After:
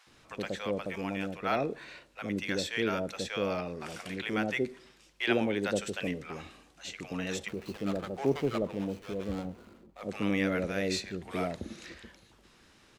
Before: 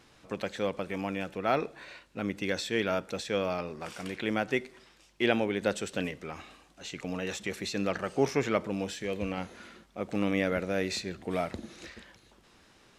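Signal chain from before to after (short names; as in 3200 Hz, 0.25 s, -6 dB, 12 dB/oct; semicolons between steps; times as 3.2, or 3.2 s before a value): 7.48–10.02 median filter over 25 samples; bands offset in time highs, lows 70 ms, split 690 Hz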